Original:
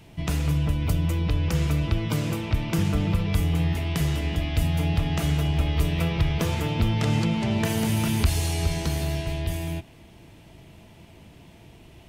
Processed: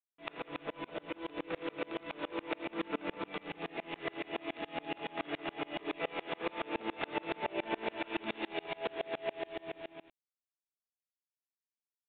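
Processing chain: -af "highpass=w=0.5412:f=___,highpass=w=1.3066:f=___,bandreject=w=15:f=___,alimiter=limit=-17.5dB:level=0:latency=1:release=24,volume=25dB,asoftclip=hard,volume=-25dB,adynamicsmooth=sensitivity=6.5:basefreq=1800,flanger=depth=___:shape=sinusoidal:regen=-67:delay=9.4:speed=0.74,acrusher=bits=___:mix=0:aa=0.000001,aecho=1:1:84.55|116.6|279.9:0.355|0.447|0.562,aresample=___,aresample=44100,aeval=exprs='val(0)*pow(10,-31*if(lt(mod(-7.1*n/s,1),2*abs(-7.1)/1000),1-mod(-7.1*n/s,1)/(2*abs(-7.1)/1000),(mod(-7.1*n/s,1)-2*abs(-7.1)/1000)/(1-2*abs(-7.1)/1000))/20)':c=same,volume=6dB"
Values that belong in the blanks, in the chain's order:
330, 330, 3100, 4.1, 7, 8000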